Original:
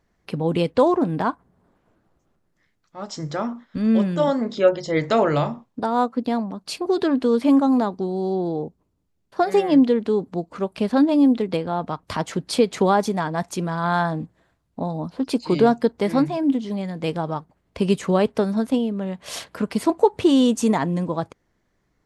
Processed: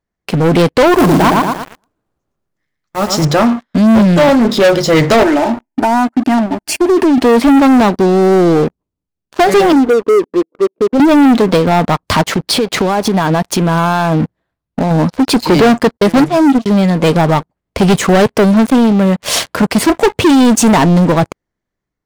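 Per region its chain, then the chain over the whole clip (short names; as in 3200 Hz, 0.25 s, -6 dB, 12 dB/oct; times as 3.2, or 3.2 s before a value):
0.87–3.25 short-mantissa float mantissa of 2-bit + feedback echo 0.114 s, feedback 43%, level -5 dB
5.23–7.18 comb 3.3 ms, depth 51% + compressor 3:1, threshold -22 dBFS + fixed phaser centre 770 Hz, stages 8
9.72–11 Butterworth band-pass 400 Hz, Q 2.1 + comb 0.8 ms, depth 44%
12.21–14.91 bell 7500 Hz -7 dB 0.66 oct + compressor 16:1, threshold -26 dBFS
15.97–16.66 expander -26 dBFS + transient shaper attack -1 dB, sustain -9 dB
whole clip: sample leveller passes 5; AGC gain up to 4.5 dB; gain -2 dB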